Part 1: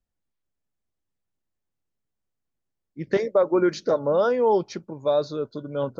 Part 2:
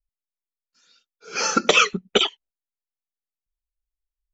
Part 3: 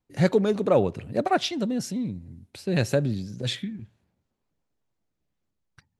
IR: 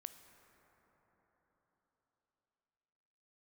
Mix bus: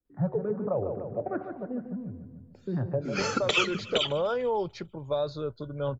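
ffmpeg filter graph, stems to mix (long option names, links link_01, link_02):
-filter_complex "[0:a]asubboost=boost=11:cutoff=73,adelay=50,volume=-2dB[link_01];[1:a]adelay=1800,volume=-5dB,asplit=2[link_02][link_03];[link_03]volume=-19dB[link_04];[2:a]lowpass=frequency=1300:width=0.5412,lowpass=frequency=1300:width=1.3066,bandreject=frequency=74.96:width_type=h:width=4,bandreject=frequency=149.92:width_type=h:width=4,bandreject=frequency=224.88:width_type=h:width=4,bandreject=frequency=299.84:width_type=h:width=4,bandreject=frequency=374.8:width_type=h:width=4,bandreject=frequency=449.76:width_type=h:width=4,bandreject=frequency=524.72:width_type=h:width=4,bandreject=frequency=599.68:width_type=h:width=4,bandreject=frequency=674.64:width_type=h:width=4,bandreject=frequency=749.6:width_type=h:width=4,bandreject=frequency=824.56:width_type=h:width=4,bandreject=frequency=899.52:width_type=h:width=4,bandreject=frequency=974.48:width_type=h:width=4,bandreject=frequency=1049.44:width_type=h:width=4,bandreject=frequency=1124.4:width_type=h:width=4,bandreject=frequency=1199.36:width_type=h:width=4,bandreject=frequency=1274.32:width_type=h:width=4,bandreject=frequency=1349.28:width_type=h:width=4,bandreject=frequency=1424.24:width_type=h:width=4,bandreject=frequency=1499.2:width_type=h:width=4,bandreject=frequency=1574.16:width_type=h:width=4,bandreject=frequency=1649.12:width_type=h:width=4,bandreject=frequency=1724.08:width_type=h:width=4,bandreject=frequency=1799.04:width_type=h:width=4,bandreject=frequency=1874:width_type=h:width=4,bandreject=frequency=1948.96:width_type=h:width=4,asplit=2[link_05][link_06];[link_06]afreqshift=-2.3[link_07];[link_05][link_07]amix=inputs=2:normalize=1,volume=-3.5dB,asplit=3[link_08][link_09][link_10];[link_09]volume=-9dB[link_11];[link_10]apad=whole_len=266564[link_12];[link_01][link_12]sidechaincompress=threshold=-34dB:ratio=8:attack=16:release=536[link_13];[link_04][link_11]amix=inputs=2:normalize=0,aecho=0:1:148|296|444|592|740|888|1036:1|0.5|0.25|0.125|0.0625|0.0312|0.0156[link_14];[link_13][link_02][link_08][link_14]amix=inputs=4:normalize=0,equalizer=frequency=5900:width=3.5:gain=-11,acrossover=split=130|3000[link_15][link_16][link_17];[link_16]acompressor=threshold=-26dB:ratio=3[link_18];[link_15][link_18][link_17]amix=inputs=3:normalize=0"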